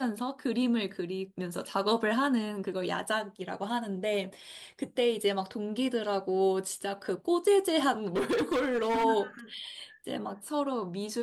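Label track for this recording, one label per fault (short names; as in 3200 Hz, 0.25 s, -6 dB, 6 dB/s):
8.050000	9.050000	clipped -25 dBFS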